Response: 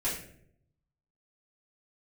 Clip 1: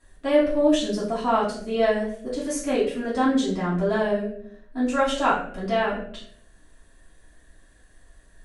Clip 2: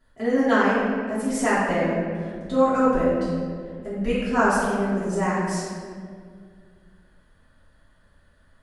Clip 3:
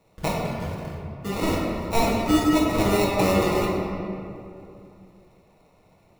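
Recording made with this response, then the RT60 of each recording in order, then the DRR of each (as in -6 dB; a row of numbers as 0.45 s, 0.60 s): 1; 0.65 s, 2.1 s, 2.7 s; -10.5 dB, -12.0 dB, -5.5 dB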